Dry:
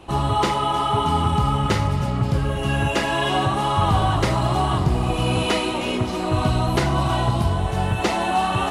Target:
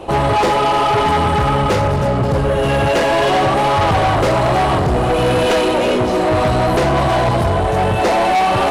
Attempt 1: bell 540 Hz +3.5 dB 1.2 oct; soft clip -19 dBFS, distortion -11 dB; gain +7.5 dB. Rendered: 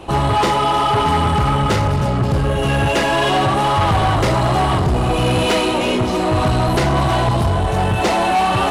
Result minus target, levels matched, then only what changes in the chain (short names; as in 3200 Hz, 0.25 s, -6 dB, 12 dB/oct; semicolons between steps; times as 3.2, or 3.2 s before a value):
500 Hz band -3.0 dB
change: bell 540 Hz +12 dB 1.2 oct